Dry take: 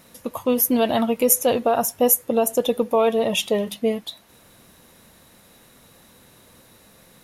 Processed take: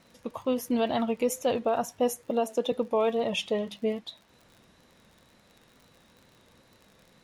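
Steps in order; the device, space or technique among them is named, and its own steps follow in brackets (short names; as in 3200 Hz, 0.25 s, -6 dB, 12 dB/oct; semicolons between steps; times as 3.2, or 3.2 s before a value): 2.3–2.72 steep high-pass 180 Hz; lo-fi chain (LPF 5700 Hz 12 dB/oct; wow and flutter; crackle 55/s -37 dBFS); gain -7 dB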